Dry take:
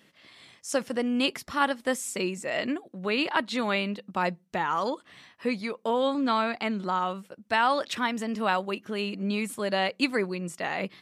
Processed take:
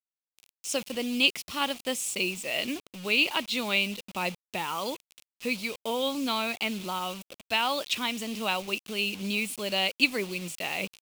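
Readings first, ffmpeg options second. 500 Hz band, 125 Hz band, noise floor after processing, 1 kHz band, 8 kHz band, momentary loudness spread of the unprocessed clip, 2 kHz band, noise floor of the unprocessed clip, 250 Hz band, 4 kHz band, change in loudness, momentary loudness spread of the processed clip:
-4.5 dB, -4.0 dB, under -85 dBFS, -5.5 dB, +4.0 dB, 7 LU, +1.5 dB, -63 dBFS, -4.0 dB, +6.0 dB, -0.5 dB, 9 LU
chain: -af "acrusher=bits=6:mix=0:aa=0.000001,highshelf=f=2.1k:t=q:w=3:g=6,volume=-4dB"

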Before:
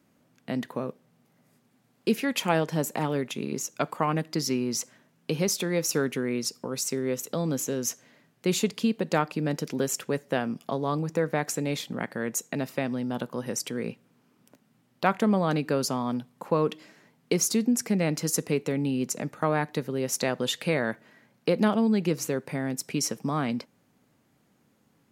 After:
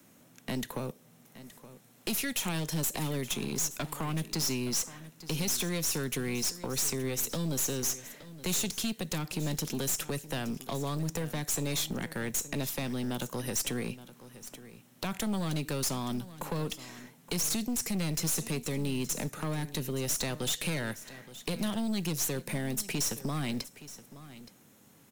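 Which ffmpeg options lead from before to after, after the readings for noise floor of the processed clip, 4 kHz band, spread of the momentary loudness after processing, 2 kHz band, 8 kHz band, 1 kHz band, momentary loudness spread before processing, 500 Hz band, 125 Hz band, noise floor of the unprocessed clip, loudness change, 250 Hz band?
-60 dBFS, -0.5 dB, 14 LU, -5.0 dB, 0.0 dB, -9.5 dB, 8 LU, -9.5 dB, -2.5 dB, -67 dBFS, -4.5 dB, -6.5 dB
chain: -filter_complex "[0:a]bandreject=f=4.7k:w=9.8,deesser=0.5,highshelf=f=4.4k:g=11,acrossover=split=370[a][b];[b]alimiter=limit=-17dB:level=0:latency=1:release=79[c];[a][c]amix=inputs=2:normalize=0,acrossover=split=140|3000[d][e][f];[e]acompressor=threshold=-38dB:ratio=6[g];[d][g][f]amix=inputs=3:normalize=0,acrusher=bits=6:mode=log:mix=0:aa=0.000001,aeval=exprs='(tanh(50.1*val(0)+0.45)-tanh(0.45))/50.1':c=same,asplit=2[h][i];[i]aecho=0:1:871:0.158[j];[h][j]amix=inputs=2:normalize=0,volume=6.5dB"

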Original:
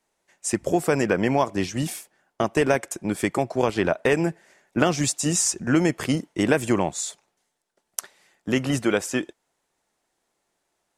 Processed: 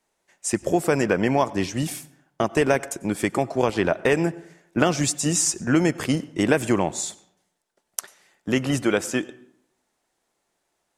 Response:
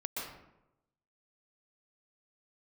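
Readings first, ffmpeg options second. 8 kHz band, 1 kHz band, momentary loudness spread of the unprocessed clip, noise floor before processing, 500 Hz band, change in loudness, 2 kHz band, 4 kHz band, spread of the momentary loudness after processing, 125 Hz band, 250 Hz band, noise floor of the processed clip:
+0.5 dB, +0.5 dB, 10 LU, -77 dBFS, +0.5 dB, +0.5 dB, +0.5 dB, +0.5 dB, 11 LU, +0.5 dB, +0.5 dB, -76 dBFS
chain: -filter_complex "[0:a]asplit=2[a][b];[1:a]atrim=start_sample=2205,asetrate=57330,aresample=44100[c];[b][c]afir=irnorm=-1:irlink=0,volume=-18dB[d];[a][d]amix=inputs=2:normalize=0"

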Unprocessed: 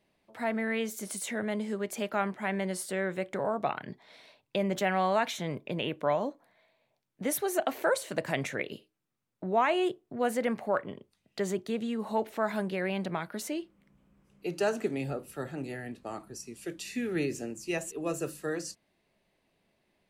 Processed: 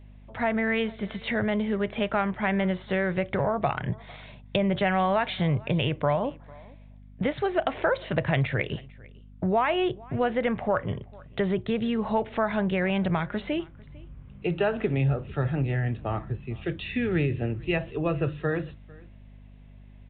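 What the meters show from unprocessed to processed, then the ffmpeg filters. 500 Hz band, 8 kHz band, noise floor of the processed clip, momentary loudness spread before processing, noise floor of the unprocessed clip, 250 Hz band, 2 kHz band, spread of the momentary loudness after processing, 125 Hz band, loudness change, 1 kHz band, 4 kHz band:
+4.0 dB, under -40 dB, -49 dBFS, 11 LU, -78 dBFS, +6.0 dB, +5.0 dB, 9 LU, +13.0 dB, +5.0 dB, +3.5 dB, +4.5 dB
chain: -af "lowshelf=f=160:t=q:w=1.5:g=13.5,acompressor=threshold=-32dB:ratio=2.5,aresample=8000,aresample=44100,aeval=exprs='val(0)+0.00158*(sin(2*PI*50*n/s)+sin(2*PI*2*50*n/s)/2+sin(2*PI*3*50*n/s)/3+sin(2*PI*4*50*n/s)/4+sin(2*PI*5*50*n/s)/5)':c=same,aecho=1:1:449:0.0631,volume=9dB"

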